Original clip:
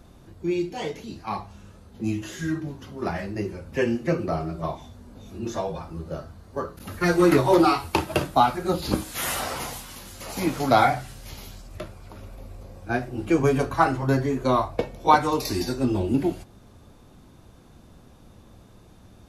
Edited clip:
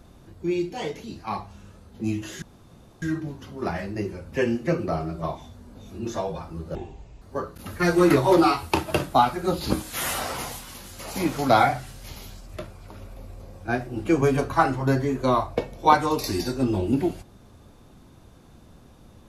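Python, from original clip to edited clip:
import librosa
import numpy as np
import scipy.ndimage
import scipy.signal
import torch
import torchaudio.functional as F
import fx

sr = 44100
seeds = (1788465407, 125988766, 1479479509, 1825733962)

y = fx.edit(x, sr, fx.insert_room_tone(at_s=2.42, length_s=0.6),
    fx.speed_span(start_s=6.15, length_s=0.28, speed=0.6), tone=tone)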